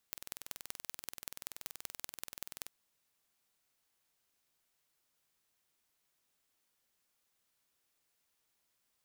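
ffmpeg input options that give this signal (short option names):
-f lavfi -i "aevalsrc='0.266*eq(mod(n,2110),0)*(0.5+0.5*eq(mod(n,8440),0))':d=2.56:s=44100"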